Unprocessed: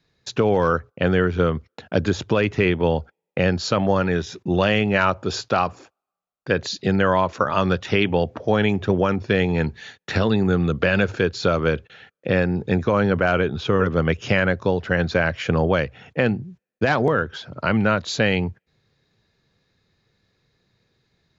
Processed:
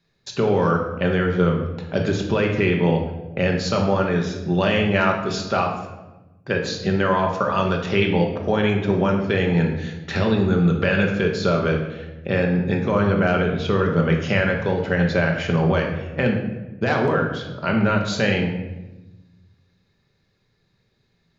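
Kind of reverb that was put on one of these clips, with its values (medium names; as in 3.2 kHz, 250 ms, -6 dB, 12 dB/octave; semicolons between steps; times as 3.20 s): simulated room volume 500 m³, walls mixed, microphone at 1.2 m; trim -3 dB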